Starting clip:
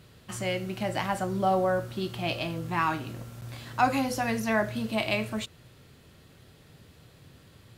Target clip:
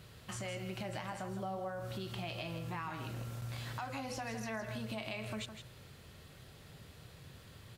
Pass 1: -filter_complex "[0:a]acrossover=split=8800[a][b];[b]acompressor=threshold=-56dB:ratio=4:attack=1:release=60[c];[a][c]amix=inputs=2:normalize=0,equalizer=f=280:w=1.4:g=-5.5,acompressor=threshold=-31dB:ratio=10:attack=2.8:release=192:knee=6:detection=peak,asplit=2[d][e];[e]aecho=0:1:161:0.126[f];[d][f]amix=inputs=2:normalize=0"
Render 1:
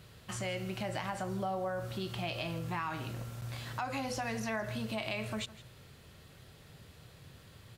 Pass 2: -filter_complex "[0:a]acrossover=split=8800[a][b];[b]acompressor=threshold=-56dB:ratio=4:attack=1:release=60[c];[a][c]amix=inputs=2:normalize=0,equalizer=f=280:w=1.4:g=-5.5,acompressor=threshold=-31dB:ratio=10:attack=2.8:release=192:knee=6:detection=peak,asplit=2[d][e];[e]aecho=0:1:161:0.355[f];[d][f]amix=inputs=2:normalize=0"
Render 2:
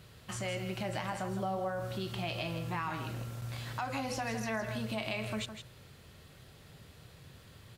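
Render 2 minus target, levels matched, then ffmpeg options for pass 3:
compressor: peak gain reduction -5.5 dB
-filter_complex "[0:a]acrossover=split=8800[a][b];[b]acompressor=threshold=-56dB:ratio=4:attack=1:release=60[c];[a][c]amix=inputs=2:normalize=0,equalizer=f=280:w=1.4:g=-5.5,acompressor=threshold=-37dB:ratio=10:attack=2.8:release=192:knee=6:detection=peak,asplit=2[d][e];[e]aecho=0:1:161:0.355[f];[d][f]amix=inputs=2:normalize=0"

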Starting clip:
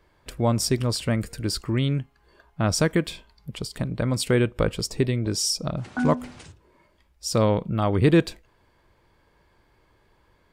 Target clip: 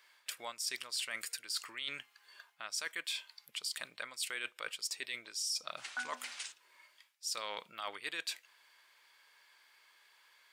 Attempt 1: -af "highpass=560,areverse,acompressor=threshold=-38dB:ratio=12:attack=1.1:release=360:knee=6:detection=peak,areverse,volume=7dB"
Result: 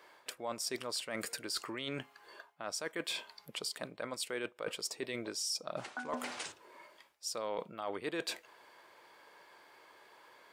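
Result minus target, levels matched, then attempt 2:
500 Hz band +11.0 dB
-af "highpass=2k,areverse,acompressor=threshold=-38dB:ratio=12:attack=1.1:release=360:knee=6:detection=peak,areverse,volume=7dB"

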